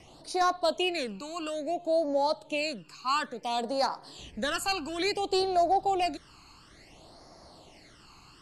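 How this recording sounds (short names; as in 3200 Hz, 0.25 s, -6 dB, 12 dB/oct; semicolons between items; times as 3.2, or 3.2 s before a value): phasing stages 12, 0.58 Hz, lowest notch 590–2900 Hz; AC-3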